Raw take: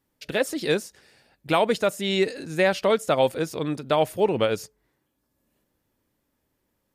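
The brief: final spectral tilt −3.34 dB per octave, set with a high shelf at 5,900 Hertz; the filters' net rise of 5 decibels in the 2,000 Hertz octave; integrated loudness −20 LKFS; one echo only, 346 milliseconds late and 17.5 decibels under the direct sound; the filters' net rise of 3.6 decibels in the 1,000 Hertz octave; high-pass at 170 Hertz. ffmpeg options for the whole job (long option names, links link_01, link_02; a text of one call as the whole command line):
ffmpeg -i in.wav -af "highpass=170,equalizer=frequency=1000:width_type=o:gain=3.5,equalizer=frequency=2000:width_type=o:gain=4.5,highshelf=frequency=5900:gain=6.5,aecho=1:1:346:0.133,volume=2.5dB" out.wav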